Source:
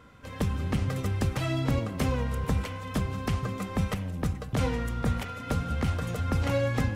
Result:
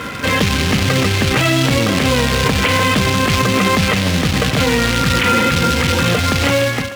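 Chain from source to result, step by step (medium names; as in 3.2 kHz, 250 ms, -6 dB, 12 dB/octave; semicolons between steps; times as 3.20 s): fade out at the end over 1.71 s; on a send: thinning echo 298 ms, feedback 46%, high-pass 490 Hz, level -14.5 dB; on the sum: spectral replace 5.00–5.98 s, 210–1100 Hz before; distance through air 470 m; in parallel at +2 dB: compressor with a negative ratio -38 dBFS, ratio -1; on the sum: short-mantissa float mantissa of 2-bit; frequency weighting D; loudness maximiser +22 dB; trim -3.5 dB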